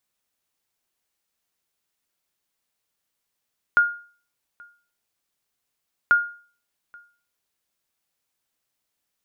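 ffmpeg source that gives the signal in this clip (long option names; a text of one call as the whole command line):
ffmpeg -f lavfi -i "aevalsrc='0.335*(sin(2*PI*1420*mod(t,2.34))*exp(-6.91*mod(t,2.34)/0.42)+0.0355*sin(2*PI*1420*max(mod(t,2.34)-0.83,0))*exp(-6.91*max(mod(t,2.34)-0.83,0)/0.42))':duration=4.68:sample_rate=44100" out.wav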